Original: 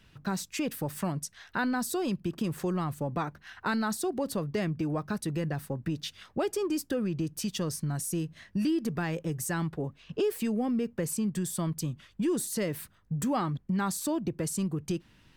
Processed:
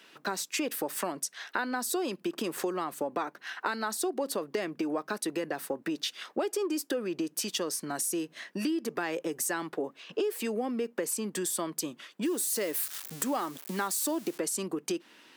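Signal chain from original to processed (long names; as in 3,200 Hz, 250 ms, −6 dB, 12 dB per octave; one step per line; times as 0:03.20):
0:12.25–0:14.38: spike at every zero crossing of −34 dBFS
high-pass filter 300 Hz 24 dB per octave
downward compressor 4 to 1, threshold −37 dBFS, peak gain reduction 10.5 dB
level +8 dB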